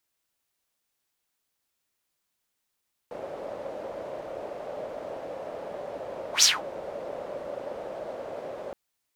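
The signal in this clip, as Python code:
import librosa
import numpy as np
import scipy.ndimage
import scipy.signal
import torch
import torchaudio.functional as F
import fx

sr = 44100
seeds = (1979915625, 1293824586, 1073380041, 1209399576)

y = fx.whoosh(sr, seeds[0], length_s=5.62, peak_s=3.32, rise_s=0.11, fall_s=0.2, ends_hz=570.0, peak_hz=5900.0, q=5.0, swell_db=20)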